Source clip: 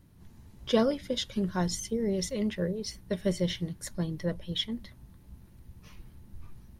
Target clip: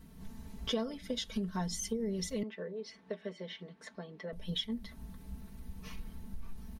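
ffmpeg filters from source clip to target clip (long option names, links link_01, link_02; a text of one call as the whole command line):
ffmpeg -i in.wav -filter_complex "[0:a]aecho=1:1:4.5:0.87,acompressor=threshold=-38dB:ratio=4,asettb=1/sr,asplit=3[link_01][link_02][link_03];[link_01]atrim=end=2.434[link_04];[link_02]atrim=start=2.43:end=4.33,asetpts=PTS-STARTPTS,afade=type=in:duration=0.004:curve=qsin,afade=type=out:start_time=1.896:duration=0.004:curve=qsin,highpass=350,lowpass=2800[link_05];[link_03]atrim=start=4.326[link_06];[link_04][link_05]acrossfade=duration=0.004:curve1=hsin:curve2=qsin[link_07];[link_07][link_06]acrossfade=duration=0.004:curve1=qsin:curve2=hsin,volume=3dB" out.wav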